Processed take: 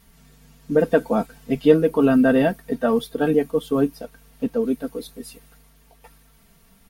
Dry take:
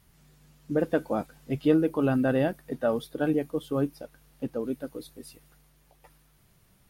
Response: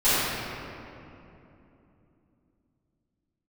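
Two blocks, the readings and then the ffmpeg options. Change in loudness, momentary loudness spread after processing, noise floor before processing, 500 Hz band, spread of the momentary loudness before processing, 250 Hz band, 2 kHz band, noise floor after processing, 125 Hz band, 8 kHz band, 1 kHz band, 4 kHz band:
+7.5 dB, 14 LU, −63 dBFS, +8.5 dB, 17 LU, +7.0 dB, +8.0 dB, −55 dBFS, +3.0 dB, can't be measured, +7.5 dB, +8.0 dB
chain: -af "aecho=1:1:4.4:0.81,volume=5.5dB"

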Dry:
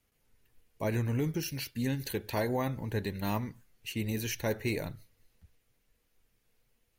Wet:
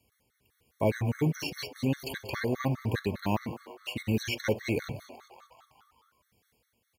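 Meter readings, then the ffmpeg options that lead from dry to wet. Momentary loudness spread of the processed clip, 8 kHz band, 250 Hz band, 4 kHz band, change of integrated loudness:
12 LU, −3.0 dB, +2.5 dB, +3.0 dB, +2.0 dB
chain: -filter_complex "[0:a]acrossover=split=6400[link_01][link_02];[link_02]acompressor=threshold=-52dB:ratio=4:attack=1:release=60[link_03];[link_01][link_03]amix=inputs=2:normalize=0,tremolo=f=1.4:d=0.38,highpass=frequency=57:width=0.5412,highpass=frequency=57:width=1.3066,asoftclip=type=hard:threshold=-22.5dB,asplit=8[link_04][link_05][link_06][link_07][link_08][link_09][link_10][link_11];[link_05]adelay=187,afreqshift=130,volume=-16.5dB[link_12];[link_06]adelay=374,afreqshift=260,volume=-20.4dB[link_13];[link_07]adelay=561,afreqshift=390,volume=-24.3dB[link_14];[link_08]adelay=748,afreqshift=520,volume=-28.1dB[link_15];[link_09]adelay=935,afreqshift=650,volume=-32dB[link_16];[link_10]adelay=1122,afreqshift=780,volume=-35.9dB[link_17];[link_11]adelay=1309,afreqshift=910,volume=-39.8dB[link_18];[link_04][link_12][link_13][link_14][link_15][link_16][link_17][link_18]amix=inputs=8:normalize=0,afftfilt=real='re*gt(sin(2*PI*4.9*pts/sr)*(1-2*mod(floor(b*sr/1024/1100),2)),0)':imag='im*gt(sin(2*PI*4.9*pts/sr)*(1-2*mod(floor(b*sr/1024/1100),2)),0)':win_size=1024:overlap=0.75,volume=8dB"

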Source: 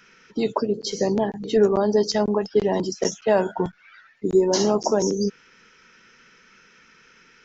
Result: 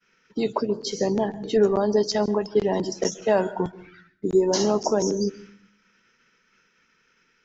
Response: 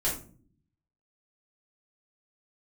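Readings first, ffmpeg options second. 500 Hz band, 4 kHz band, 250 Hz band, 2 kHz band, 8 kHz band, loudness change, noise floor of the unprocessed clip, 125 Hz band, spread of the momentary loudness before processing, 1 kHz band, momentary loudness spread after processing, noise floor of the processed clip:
−1.5 dB, −1.5 dB, −1.5 dB, −1.5 dB, can't be measured, −1.5 dB, −55 dBFS, −1.5 dB, 8 LU, −1.5 dB, 8 LU, −66 dBFS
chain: -filter_complex "[0:a]agate=range=-33dB:threshold=-46dB:ratio=3:detection=peak,asplit=2[link_01][link_02];[1:a]atrim=start_sample=2205,adelay=129[link_03];[link_02][link_03]afir=irnorm=-1:irlink=0,volume=-27.5dB[link_04];[link_01][link_04]amix=inputs=2:normalize=0,volume=-1.5dB"

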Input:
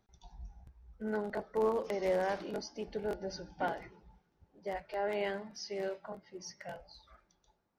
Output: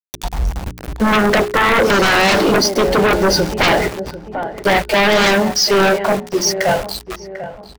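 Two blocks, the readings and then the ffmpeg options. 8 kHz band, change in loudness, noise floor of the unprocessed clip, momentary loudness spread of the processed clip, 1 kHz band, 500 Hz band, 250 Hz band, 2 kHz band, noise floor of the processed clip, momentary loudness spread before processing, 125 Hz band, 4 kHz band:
can't be measured, +23.0 dB, −77 dBFS, 15 LU, +23.5 dB, +20.0 dB, +24.5 dB, +28.5 dB, −37 dBFS, 18 LU, +27.0 dB, +31.0 dB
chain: -filter_complex "[0:a]aeval=exprs='val(0)*gte(abs(val(0)),0.00211)':channel_layout=same,apsyclip=29dB,bandreject=frequency=59.5:width_type=h:width=4,bandreject=frequency=119:width_type=h:width=4,bandreject=frequency=178.5:width_type=h:width=4,bandreject=frequency=238:width_type=h:width=4,bandreject=frequency=297.5:width_type=h:width=4,bandreject=frequency=357:width_type=h:width=4,bandreject=frequency=416.5:width_type=h:width=4,asplit=2[link_01][link_02];[link_02]adelay=745,lowpass=frequency=1500:poles=1,volume=-17dB,asplit=2[link_03][link_04];[link_04]adelay=745,lowpass=frequency=1500:poles=1,volume=0.2[link_05];[link_03][link_05]amix=inputs=2:normalize=0[link_06];[link_01][link_06]amix=inputs=2:normalize=0,acompressor=mode=upward:threshold=-24dB:ratio=2.5,aeval=exprs='1*sin(PI/2*2.51*val(0)/1)':channel_layout=same,volume=-9dB"

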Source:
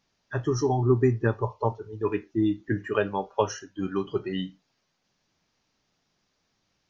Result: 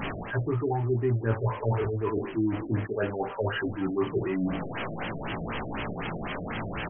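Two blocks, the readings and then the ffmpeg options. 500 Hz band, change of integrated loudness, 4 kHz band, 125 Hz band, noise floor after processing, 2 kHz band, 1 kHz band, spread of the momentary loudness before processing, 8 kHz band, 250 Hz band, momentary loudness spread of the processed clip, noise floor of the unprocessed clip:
−2.0 dB, −2.5 dB, +1.0 dB, +0.5 dB, −37 dBFS, +2.5 dB, −1.0 dB, 10 LU, can't be measured, −1.0 dB, 7 LU, −75 dBFS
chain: -filter_complex "[0:a]aeval=exprs='val(0)+0.5*0.0355*sgn(val(0))':channel_layout=same,areverse,acompressor=threshold=-30dB:ratio=8,areverse,asplit=2[link_01][link_02];[link_02]adelay=18,volume=-3.5dB[link_03];[link_01][link_03]amix=inputs=2:normalize=0,afftfilt=real='re*lt(b*sr/1024,690*pow(3400/690,0.5+0.5*sin(2*PI*4*pts/sr)))':imag='im*lt(b*sr/1024,690*pow(3400/690,0.5+0.5*sin(2*PI*4*pts/sr)))':win_size=1024:overlap=0.75,volume=4dB"

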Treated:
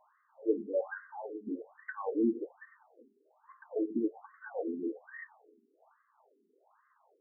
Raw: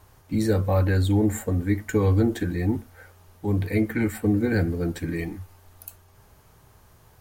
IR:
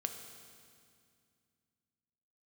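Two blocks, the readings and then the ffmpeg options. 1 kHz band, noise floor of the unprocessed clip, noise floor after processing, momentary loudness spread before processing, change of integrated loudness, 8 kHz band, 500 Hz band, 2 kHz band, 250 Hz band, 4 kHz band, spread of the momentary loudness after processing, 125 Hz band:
−10.0 dB, −56 dBFS, −73 dBFS, 13 LU, −12.0 dB, below −40 dB, −8.5 dB, −12.5 dB, −12.0 dB, below −40 dB, 15 LU, below −35 dB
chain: -filter_complex "[0:a]equalizer=frequency=580:width_type=o:width=2.8:gain=3.5,asplit=2[link_01][link_02];[1:a]atrim=start_sample=2205,afade=type=out:start_time=0.27:duration=0.01,atrim=end_sample=12348,adelay=114[link_03];[link_02][link_03]afir=irnorm=-1:irlink=0,volume=-17dB[link_04];[link_01][link_04]amix=inputs=2:normalize=0,afftfilt=real='re*between(b*sr/1024,290*pow(1500/290,0.5+0.5*sin(2*PI*1.2*pts/sr))/1.41,290*pow(1500/290,0.5+0.5*sin(2*PI*1.2*pts/sr))*1.41)':imag='im*between(b*sr/1024,290*pow(1500/290,0.5+0.5*sin(2*PI*1.2*pts/sr))/1.41,290*pow(1500/290,0.5+0.5*sin(2*PI*1.2*pts/sr))*1.41)':win_size=1024:overlap=0.75,volume=-7dB"

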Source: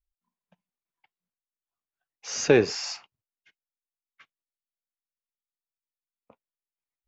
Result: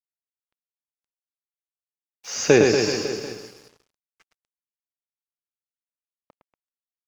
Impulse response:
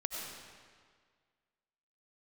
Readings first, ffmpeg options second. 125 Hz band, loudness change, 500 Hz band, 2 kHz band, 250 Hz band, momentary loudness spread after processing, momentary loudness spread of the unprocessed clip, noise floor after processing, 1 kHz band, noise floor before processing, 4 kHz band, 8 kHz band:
+5.0 dB, +4.0 dB, +5.5 dB, +5.5 dB, +6.0 dB, 19 LU, 19 LU, below −85 dBFS, +5.5 dB, below −85 dBFS, +5.0 dB, can't be measured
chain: -filter_complex "[0:a]aecho=1:1:110|236.5|382|549.3|741.7:0.631|0.398|0.251|0.158|0.1,asplit=2[link_01][link_02];[1:a]atrim=start_sample=2205,adelay=136[link_03];[link_02][link_03]afir=irnorm=-1:irlink=0,volume=-13.5dB[link_04];[link_01][link_04]amix=inputs=2:normalize=0,aeval=exprs='sgn(val(0))*max(abs(val(0))-0.00299,0)':channel_layout=same,volume=3dB"

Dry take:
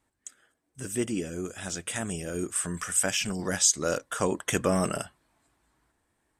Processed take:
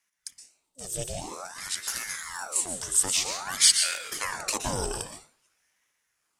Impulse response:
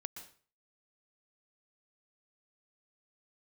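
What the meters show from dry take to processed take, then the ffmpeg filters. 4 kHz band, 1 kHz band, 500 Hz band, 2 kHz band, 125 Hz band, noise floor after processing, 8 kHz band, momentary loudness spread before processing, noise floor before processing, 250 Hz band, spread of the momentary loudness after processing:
+7.5 dB, 0.0 dB, −8.5 dB, +0.5 dB, −7.5 dB, −77 dBFS, +3.0 dB, 14 LU, −76 dBFS, −12.0 dB, 19 LU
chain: -filter_complex "[0:a]highshelf=frequency=2900:width_type=q:width=3:gain=8.5[link_01];[1:a]atrim=start_sample=2205[link_02];[link_01][link_02]afir=irnorm=-1:irlink=0,aeval=exprs='val(0)*sin(2*PI*1100*n/s+1100*0.8/0.51*sin(2*PI*0.51*n/s))':channel_layout=same"

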